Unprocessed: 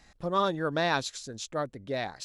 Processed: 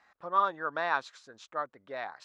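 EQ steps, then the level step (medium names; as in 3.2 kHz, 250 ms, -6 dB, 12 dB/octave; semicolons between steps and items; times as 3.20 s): band-pass filter 1.2 kHz, Q 1.8; +3.0 dB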